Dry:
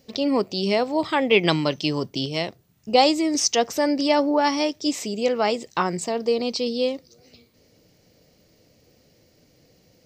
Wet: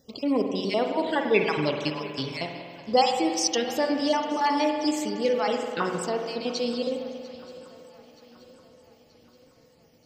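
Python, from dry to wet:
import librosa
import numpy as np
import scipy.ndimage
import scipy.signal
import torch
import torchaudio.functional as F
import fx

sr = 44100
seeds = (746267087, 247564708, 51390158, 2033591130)

y = fx.spec_dropout(x, sr, seeds[0], share_pct=34)
y = fx.echo_swing(y, sr, ms=927, ratio=3, feedback_pct=49, wet_db=-20.0)
y = fx.rev_spring(y, sr, rt60_s=1.9, pass_ms=(46,), chirp_ms=60, drr_db=3.5)
y = y * 10.0 ** (-3.5 / 20.0)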